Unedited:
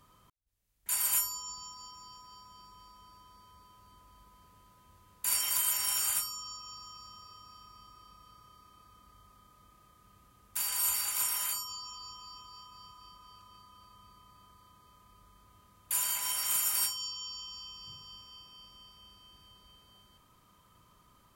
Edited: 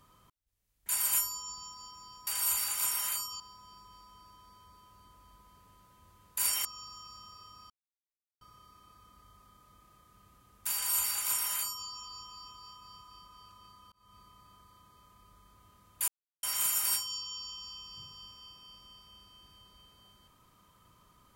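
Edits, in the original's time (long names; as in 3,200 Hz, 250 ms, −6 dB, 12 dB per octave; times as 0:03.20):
0:05.52–0:06.55: remove
0:07.60–0:08.31: silence
0:10.64–0:11.77: duplicate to 0:02.27
0:13.82–0:14.07: fade in
0:15.98–0:16.33: silence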